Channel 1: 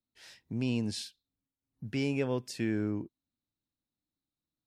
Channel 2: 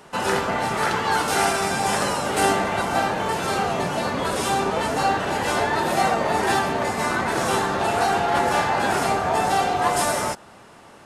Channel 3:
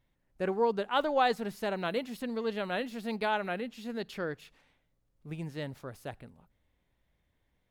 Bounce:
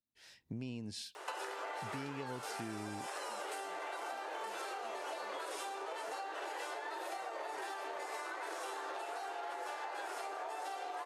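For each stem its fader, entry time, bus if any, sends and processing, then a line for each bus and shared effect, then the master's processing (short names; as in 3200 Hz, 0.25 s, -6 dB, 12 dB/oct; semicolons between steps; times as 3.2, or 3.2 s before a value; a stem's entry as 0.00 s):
-7.0 dB, 0.00 s, no bus, no send, AGC gain up to 8.5 dB
-0.5 dB, 1.15 s, bus A, no send, steep high-pass 300 Hz 96 dB/oct
+0.5 dB, 1.90 s, bus A, no send, LFO band-pass sine 2.6 Hz 200–2500 Hz
bus A: 0.0 dB, tone controls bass -15 dB, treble -1 dB; compressor, threshold -30 dBFS, peak gain reduction 13 dB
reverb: off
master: compressor 12:1, threshold -39 dBFS, peak gain reduction 16.5 dB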